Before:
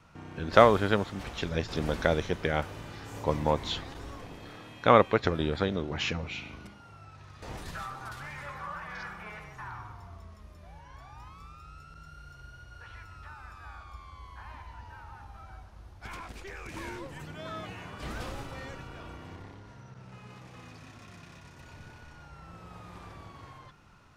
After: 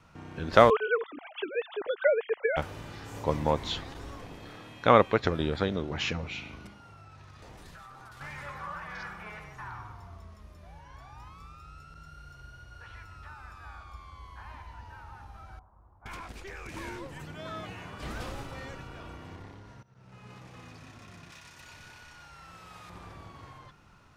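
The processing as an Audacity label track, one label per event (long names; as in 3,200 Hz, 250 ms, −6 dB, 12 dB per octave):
0.700000	2.570000	three sine waves on the formant tracks
6.790000	8.210000	downward compressor 5 to 1, threshold −46 dBFS
15.590000	16.060000	transistor ladder low-pass 1,200 Hz, resonance 55%
19.830000	20.310000	fade in, from −20 dB
21.300000	22.900000	tilt shelving filter lows −7 dB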